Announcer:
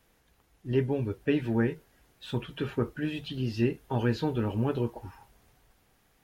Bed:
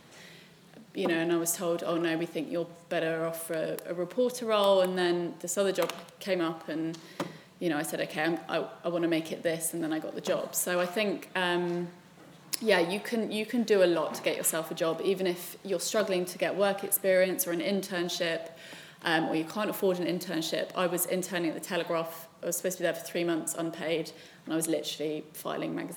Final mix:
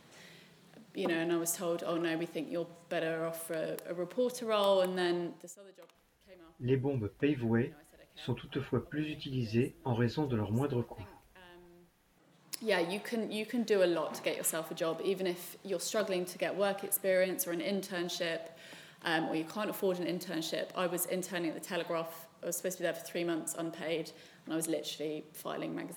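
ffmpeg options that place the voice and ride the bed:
ffmpeg -i stem1.wav -i stem2.wav -filter_complex "[0:a]adelay=5950,volume=-4dB[link_01];[1:a]volume=18dB,afade=type=out:start_time=5.25:duration=0.32:silence=0.0707946,afade=type=in:start_time=11.97:duration=0.91:silence=0.0749894[link_02];[link_01][link_02]amix=inputs=2:normalize=0" out.wav

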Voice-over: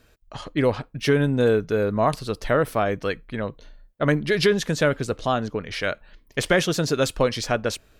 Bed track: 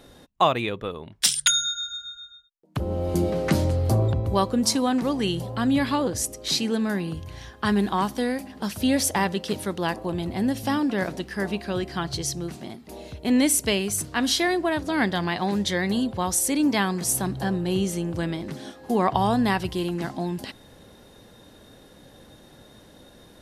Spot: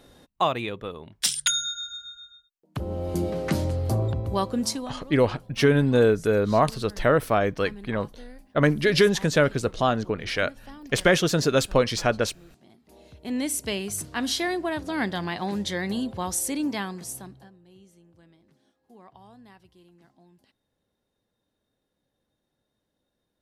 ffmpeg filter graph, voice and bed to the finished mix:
ffmpeg -i stem1.wav -i stem2.wav -filter_complex "[0:a]adelay=4550,volume=0.5dB[link_01];[1:a]volume=13dB,afade=type=out:start_time=4.61:duration=0.34:silence=0.141254,afade=type=in:start_time=12.6:duration=1.43:silence=0.149624,afade=type=out:start_time=16.42:duration=1.09:silence=0.0562341[link_02];[link_01][link_02]amix=inputs=2:normalize=0" out.wav

